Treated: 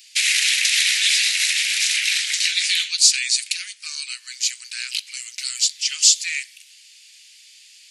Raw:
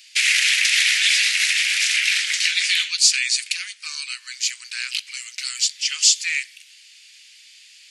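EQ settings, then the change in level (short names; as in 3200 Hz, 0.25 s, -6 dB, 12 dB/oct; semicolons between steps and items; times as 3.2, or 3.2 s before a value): tilt +3 dB/oct; dynamic EQ 3900 Hz, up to +4 dB, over -29 dBFS, Q 7.7; -6.5 dB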